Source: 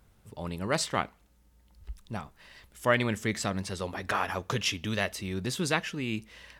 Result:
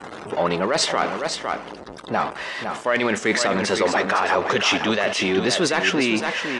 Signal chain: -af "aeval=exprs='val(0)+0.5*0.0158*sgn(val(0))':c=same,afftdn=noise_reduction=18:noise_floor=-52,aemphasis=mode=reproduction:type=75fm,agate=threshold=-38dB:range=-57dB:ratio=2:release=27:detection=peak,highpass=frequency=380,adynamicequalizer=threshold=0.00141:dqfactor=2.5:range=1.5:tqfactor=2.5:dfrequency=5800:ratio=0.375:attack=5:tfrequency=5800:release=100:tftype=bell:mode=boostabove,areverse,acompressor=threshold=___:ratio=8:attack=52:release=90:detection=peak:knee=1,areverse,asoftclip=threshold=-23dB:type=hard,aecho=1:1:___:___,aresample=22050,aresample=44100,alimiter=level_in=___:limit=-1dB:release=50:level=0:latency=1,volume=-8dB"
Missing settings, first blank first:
-39dB, 507, 0.398, 26.5dB